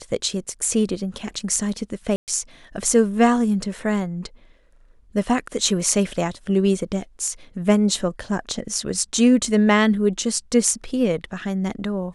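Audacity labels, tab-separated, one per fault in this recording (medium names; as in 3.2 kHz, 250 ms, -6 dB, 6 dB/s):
2.160000	2.280000	dropout 118 ms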